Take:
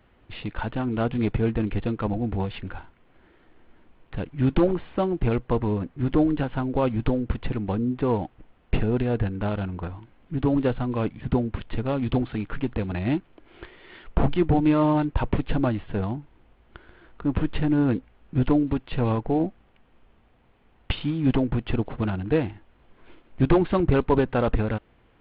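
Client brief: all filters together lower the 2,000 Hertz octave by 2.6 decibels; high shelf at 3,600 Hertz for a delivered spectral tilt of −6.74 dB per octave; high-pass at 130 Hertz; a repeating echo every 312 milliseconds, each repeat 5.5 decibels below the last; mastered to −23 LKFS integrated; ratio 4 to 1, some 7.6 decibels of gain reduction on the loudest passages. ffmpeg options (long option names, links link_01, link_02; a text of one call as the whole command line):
ffmpeg -i in.wav -af "highpass=130,equalizer=frequency=2000:width_type=o:gain=-5.5,highshelf=frequency=3600:gain=6,acompressor=threshold=-25dB:ratio=4,aecho=1:1:312|624|936|1248|1560|1872|2184:0.531|0.281|0.149|0.079|0.0419|0.0222|0.0118,volume=7dB" out.wav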